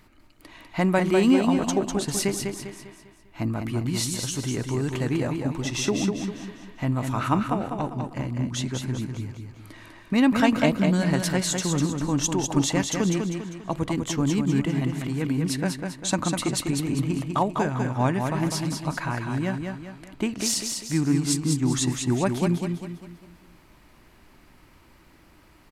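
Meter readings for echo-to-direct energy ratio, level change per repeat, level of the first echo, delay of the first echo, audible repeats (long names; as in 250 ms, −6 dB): −4.0 dB, −7.5 dB, −5.0 dB, 199 ms, 4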